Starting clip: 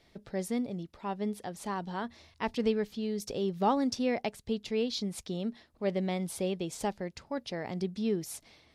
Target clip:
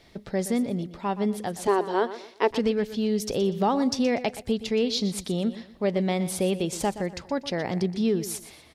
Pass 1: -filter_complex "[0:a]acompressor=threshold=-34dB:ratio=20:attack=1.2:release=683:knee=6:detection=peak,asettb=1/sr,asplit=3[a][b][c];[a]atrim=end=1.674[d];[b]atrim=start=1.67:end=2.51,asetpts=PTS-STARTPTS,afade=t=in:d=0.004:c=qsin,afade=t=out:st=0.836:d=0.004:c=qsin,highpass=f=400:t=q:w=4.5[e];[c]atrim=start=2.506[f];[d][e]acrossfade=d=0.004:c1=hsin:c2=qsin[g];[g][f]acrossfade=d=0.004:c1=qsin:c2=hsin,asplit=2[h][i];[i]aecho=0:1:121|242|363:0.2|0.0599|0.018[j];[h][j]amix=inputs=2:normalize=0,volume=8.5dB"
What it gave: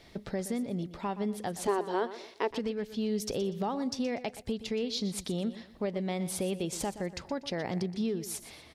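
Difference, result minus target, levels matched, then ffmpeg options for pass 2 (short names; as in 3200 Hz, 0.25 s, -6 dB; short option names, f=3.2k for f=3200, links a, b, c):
compressor: peak gain reduction +10 dB
-filter_complex "[0:a]acompressor=threshold=-23.5dB:ratio=20:attack=1.2:release=683:knee=6:detection=peak,asettb=1/sr,asplit=3[a][b][c];[a]atrim=end=1.674[d];[b]atrim=start=1.67:end=2.51,asetpts=PTS-STARTPTS,afade=t=in:d=0.004:c=qsin,afade=t=out:st=0.836:d=0.004:c=qsin,highpass=f=400:t=q:w=4.5[e];[c]atrim=start=2.506[f];[d][e]acrossfade=d=0.004:c1=hsin:c2=qsin[g];[g][f]acrossfade=d=0.004:c1=qsin:c2=hsin,asplit=2[h][i];[i]aecho=0:1:121|242|363:0.2|0.0599|0.018[j];[h][j]amix=inputs=2:normalize=0,volume=8.5dB"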